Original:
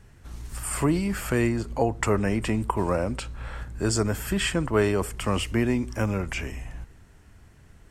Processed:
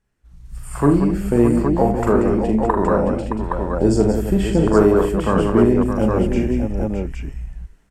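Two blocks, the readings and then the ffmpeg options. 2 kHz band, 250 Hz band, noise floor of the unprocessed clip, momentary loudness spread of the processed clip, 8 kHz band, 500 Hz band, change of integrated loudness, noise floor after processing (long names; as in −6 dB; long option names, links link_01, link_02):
−1.0 dB, +10.5 dB, −52 dBFS, 9 LU, −5.0 dB, +10.5 dB, +8.5 dB, −49 dBFS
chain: -filter_complex "[0:a]afwtdn=0.0447,equalizer=frequency=97:width_type=o:width=0.58:gain=-11.5,dynaudnorm=framelen=360:gausssize=3:maxgain=15dB,asplit=2[link_01][link_02];[link_02]aecho=0:1:42|78|183|249|619|818:0.531|0.237|0.398|0.141|0.398|0.596[link_03];[link_01][link_03]amix=inputs=2:normalize=0,volume=-2.5dB"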